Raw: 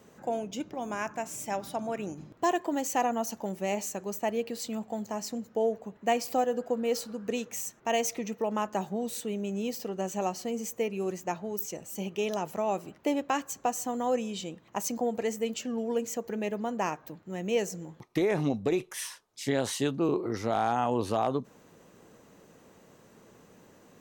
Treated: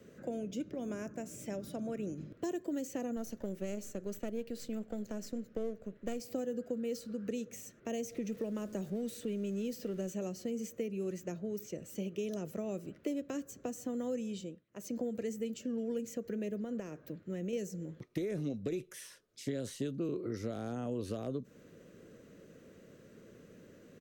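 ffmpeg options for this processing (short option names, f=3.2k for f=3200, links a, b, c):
-filter_complex "[0:a]asettb=1/sr,asplit=3[a][b][c];[a]atrim=end=3.164[d];[b]atrim=start=3.16:end=6.2,asetpts=PTS-STARTPTS,afade=t=in:d=0.004:c=qsin,afade=t=out:st=3.036:d=0.004:c=qsin,aeval=exprs='if(lt(val(0),0),0.447*val(0),val(0))':c=same[e];[c]atrim=start=6.196[f];[d][e]acrossfade=d=0.004:c1=hsin:c2=qsin[g];[g][f]acrossfade=d=0.004:c1=qsin:c2=hsin,asettb=1/sr,asplit=3[h][i][j];[h]atrim=end=8.034[k];[i]atrim=start=8.03:end=10.13,asetpts=PTS-STARTPTS,afade=t=in:d=0.004:c=qsin,afade=t=out:st=2.096:d=0.004:c=qsin,aeval=exprs='val(0)+0.5*0.00531*sgn(val(0))':c=same[l];[j]atrim=start=10.126[m];[k][l]acrossfade=d=0.004:c1=hsin:c2=qsin[n];[n][m]acrossfade=d=0.004:c1=qsin:c2=hsin,asettb=1/sr,asplit=3[o][p][q];[o]atrim=end=16.624[r];[p]atrim=start=16.62:end=17.53,asetpts=PTS-STARTPTS,afade=t=in:d=0.004:c=qsin,afade=t=out:st=0.906:d=0.004:c=qsin,acompressor=threshold=-31dB:ratio=6:attack=3.2:release=140:knee=1:detection=peak[s];[q]atrim=start=17.526[t];[r][s]acrossfade=d=0.004:c1=hsin:c2=qsin[u];[u][t]acrossfade=d=0.004:c1=qsin:c2=hsin,asplit=3[v][w][x];[v]atrim=end=14.66,asetpts=PTS-STARTPTS,afade=t=out:st=14.32:d=0.34:silence=0.0630957[y];[w]atrim=start=14.66:end=14.68,asetpts=PTS-STARTPTS,volume=-24dB[z];[x]atrim=start=14.68,asetpts=PTS-STARTPTS,afade=t=in:d=0.34:silence=0.0630957[aa];[y][z][aa]concat=n=3:v=0:a=1,firequalizer=gain_entry='entry(560,0);entry(820,-19);entry(1400,-3);entry(7200,-8)':delay=0.05:min_phase=1,acrossover=split=280|840|5200[ab][ac][ad][ae];[ab]acompressor=threshold=-40dB:ratio=4[af];[ac]acompressor=threshold=-42dB:ratio=4[ag];[ad]acompressor=threshold=-57dB:ratio=4[ah];[ae]acompressor=threshold=-50dB:ratio=4[ai];[af][ag][ah][ai]amix=inputs=4:normalize=0,volume=1dB"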